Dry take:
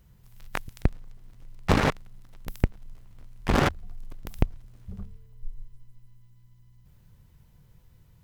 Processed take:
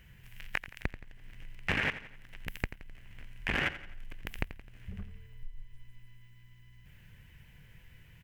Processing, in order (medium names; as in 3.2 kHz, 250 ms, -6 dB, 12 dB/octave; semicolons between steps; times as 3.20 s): high-order bell 2.2 kHz +15 dB 1.2 oct; compression 2:1, threshold -40 dBFS, peak gain reduction 15 dB; feedback delay 86 ms, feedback 46%, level -14 dB